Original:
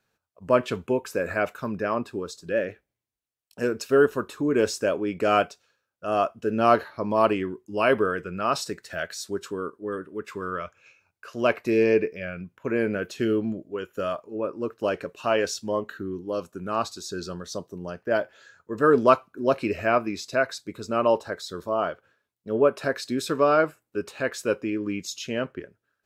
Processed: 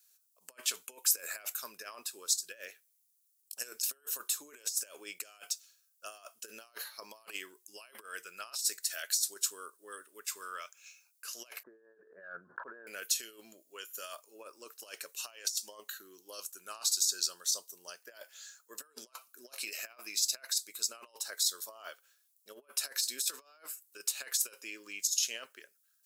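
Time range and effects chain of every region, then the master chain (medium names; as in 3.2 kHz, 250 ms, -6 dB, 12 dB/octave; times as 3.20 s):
11.63–12.87 s: Chebyshev low-pass 1.7 kHz, order 8 + decay stretcher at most 22 dB/s
whole clip: tone controls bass -13 dB, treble +12 dB; compressor with a negative ratio -29 dBFS, ratio -0.5; differentiator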